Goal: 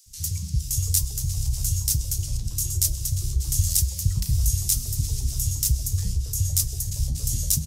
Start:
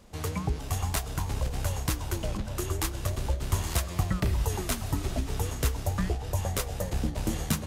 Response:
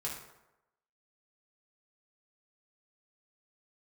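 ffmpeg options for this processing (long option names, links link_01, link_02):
-filter_complex "[0:a]firequalizer=gain_entry='entry(130,0);entry(190,-15);entry(750,-28);entry(5400,7)':delay=0.05:min_phase=1,acrossover=split=330|1200[link_01][link_02][link_03];[link_01]adelay=60[link_04];[link_02]adelay=630[link_05];[link_04][link_05][link_03]amix=inputs=3:normalize=0,asplit=2[link_06][link_07];[1:a]atrim=start_sample=2205[link_08];[link_07][link_08]afir=irnorm=-1:irlink=0,volume=-18.5dB[link_09];[link_06][link_09]amix=inputs=2:normalize=0,volume=5dB"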